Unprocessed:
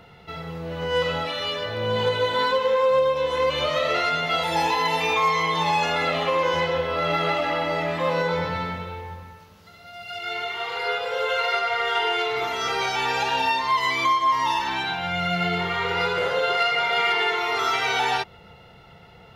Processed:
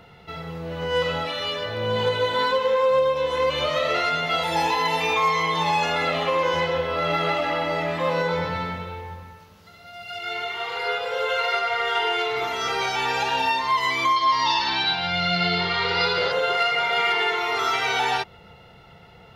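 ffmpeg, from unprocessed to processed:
-filter_complex "[0:a]asettb=1/sr,asplit=3[a][b][c];[a]atrim=end=14.164[d];[b]atrim=start=14.16:end=16.32,asetpts=PTS-STARTPTS,afade=t=in:d=0.004:c=qsin,afade=t=out:st=2.156:d=0.004:c=qsin,lowpass=f=4.6k:t=q:w=5[e];[c]atrim=start=16.316[f];[d][e]acrossfade=d=0.004:c1=hsin:c2=qsin[g];[g][f]acrossfade=d=0.004:c1=qsin:c2=hsin"

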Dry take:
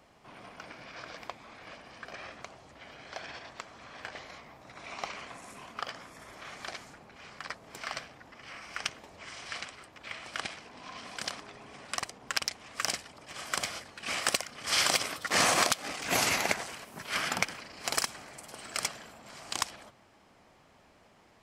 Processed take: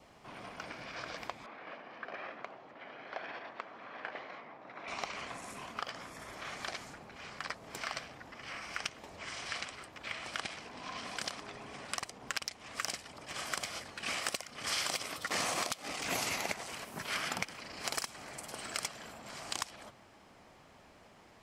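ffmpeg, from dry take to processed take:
-filter_complex "[0:a]asettb=1/sr,asplit=3[a][b][c];[a]atrim=end=1.464[d];[b]atrim=start=1.46:end=4.88,asetpts=PTS-STARTPTS,afade=t=in:d=0.004:c=qsin,afade=t=out:st=3.416:d=0.004:c=qsin,highpass=240,lowpass=2.3k[e];[c]atrim=start=4.876[f];[d][e]acrossfade=d=0.004:c1=hsin:c2=qsin[g];[g][f]acrossfade=d=0.004:c1=qsin:c2=hsin,adynamicequalizer=threshold=0.00355:dfrequency=1600:dqfactor=4.4:tfrequency=1600:tqfactor=4.4:attack=5:release=100:ratio=0.375:range=2.5:mode=cutabove:tftype=bell,acompressor=threshold=-37dB:ratio=3,volume=2dB"

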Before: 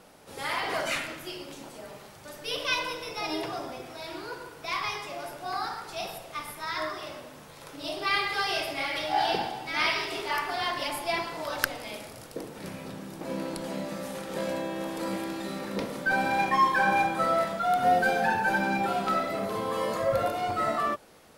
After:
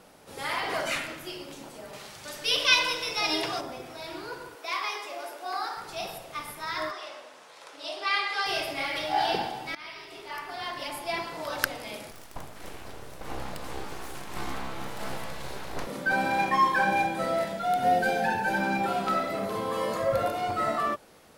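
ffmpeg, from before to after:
-filter_complex "[0:a]asettb=1/sr,asplit=3[a][b][c];[a]atrim=end=1.934[d];[b]atrim=start=1.93:end=3.61,asetpts=PTS-STARTPTS,afade=t=in:d=0.004:c=qsin,afade=t=out:st=1.676:d=0.004:c=qsin,equalizer=f=4.5k:w=0.34:g=9[e];[c]atrim=start=3.606[f];[d][e]acrossfade=d=0.004:c1=hsin:c2=qsin[g];[g][f]acrossfade=d=0.004:c1=qsin:c2=hsin,asettb=1/sr,asplit=3[h][i][j];[h]atrim=end=4.554[k];[i]atrim=start=4.55:end=5.77,asetpts=PTS-STARTPTS,afade=t=in:d=0.004:c=qsin,afade=t=out:st=1.216:d=0.004:c=qsin,highpass=f=320:w=0.5412,highpass=f=320:w=1.3066[l];[j]atrim=start=5.766[m];[k][l]acrossfade=d=0.004:c1=hsin:c2=qsin[n];[n][m]acrossfade=d=0.004:c1=qsin:c2=hsin,asettb=1/sr,asplit=3[o][p][q];[o]atrim=end=6.914[r];[p]atrim=start=6.91:end=8.46,asetpts=PTS-STARTPTS,afade=t=in:d=0.004:c=qsin,afade=t=out:st=1.546:d=0.004:c=qsin,highpass=530,lowpass=7.9k[s];[q]atrim=start=8.456[t];[r][s]acrossfade=d=0.004:c1=hsin:c2=qsin[u];[u][t]acrossfade=d=0.004:c1=qsin:c2=hsin,asettb=1/sr,asplit=3[v][w][x];[v]atrim=end=12.114[y];[w]atrim=start=12.11:end=15.87,asetpts=PTS-STARTPTS,afade=t=in:d=0.004:c=qsin,afade=t=out:st=3.756:d=0.004:c=qsin,aeval=exprs='abs(val(0))':c=same[z];[x]atrim=start=15.866[aa];[y][z]acrossfade=d=0.004:c1=hsin:c2=qsin[ab];[ab][aa]acrossfade=d=0.004:c1=qsin:c2=hsin,asettb=1/sr,asplit=3[ac][ad][ae];[ac]atrim=end=16.844[af];[ad]atrim=start=16.84:end=18.58,asetpts=PTS-STARTPTS,afade=t=in:d=0.004:c=qsin,afade=t=out:st=1.736:d=0.004:c=qsin,equalizer=f=1.2k:t=o:w=0.32:g=-13[ag];[ae]atrim=start=18.576[ah];[af][ag]acrossfade=d=0.004:c1=hsin:c2=qsin[ai];[ai][ah]acrossfade=d=0.004:c1=qsin:c2=hsin,asplit=2[aj][ak];[aj]atrim=end=9.75,asetpts=PTS-STARTPTS,afade=t=out:st=9.746:d=0.004:c=hsin:silence=0.1[al];[ak]atrim=start=9.75,asetpts=PTS-STARTPTS,afade=t=in:d=1.84:silence=0.1[am];[al][am]concat=n=2:v=0:a=1"

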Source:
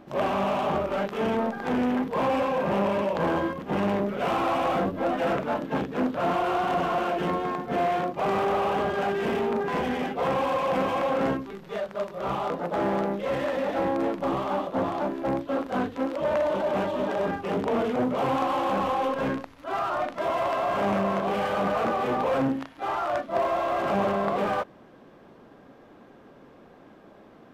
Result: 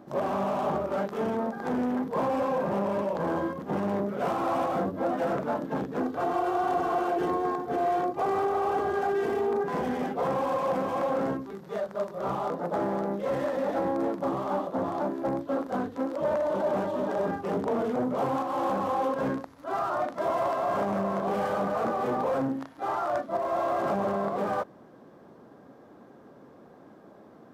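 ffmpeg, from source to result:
-filter_complex "[0:a]asettb=1/sr,asplit=3[a][b][c];[a]atrim=end=6.004[d];[b]atrim=start=6:end=9.64,asetpts=PTS-STARTPTS,afade=t=in:d=0.004:c=qsin,afade=t=out:st=3.636:d=0.004:c=qsin,aecho=1:1:2.6:0.65,atrim=end_sample=160524[e];[c]atrim=start=9.636[f];[d][e]acrossfade=d=0.004:c1=hsin:c2=qsin[g];[g][f]acrossfade=d=0.004:c1=qsin:c2=hsin,highpass=84,equalizer=f=2.7k:t=o:w=1.1:g=-10,alimiter=limit=-19dB:level=0:latency=1:release=233"

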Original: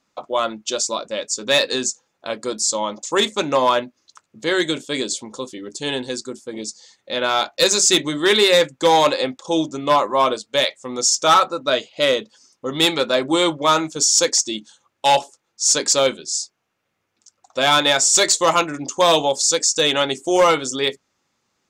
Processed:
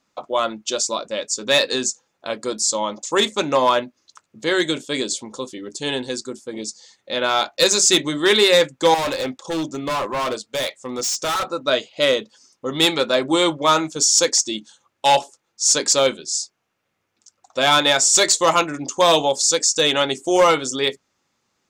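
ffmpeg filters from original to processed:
-filter_complex "[0:a]asettb=1/sr,asplit=3[a][b][c];[a]atrim=end=8.944[d];[b]atrim=start=8.94:end=11.51,asetpts=PTS-STARTPTS,afade=t=in:d=0.004:c=qsin,afade=t=out:st=2.566:d=0.004:c=qsin,asoftclip=type=hard:threshold=-20.5dB[e];[c]atrim=start=11.506[f];[d][e]acrossfade=d=0.004:c1=hsin:c2=qsin[g];[g][f]acrossfade=d=0.004:c1=qsin:c2=hsin"

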